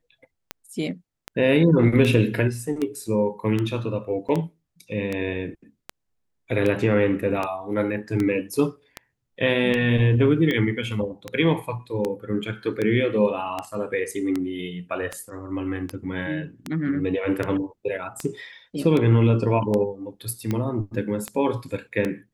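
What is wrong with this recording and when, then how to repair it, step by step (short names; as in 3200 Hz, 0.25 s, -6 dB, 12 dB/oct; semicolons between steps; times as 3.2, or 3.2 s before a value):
tick 78 rpm -13 dBFS
4.28–4.29 gap 6.9 ms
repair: de-click; interpolate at 4.28, 6.9 ms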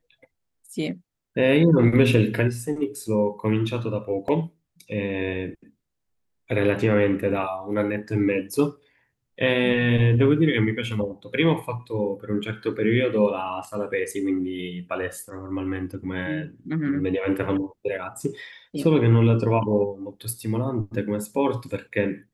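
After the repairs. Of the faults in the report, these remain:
none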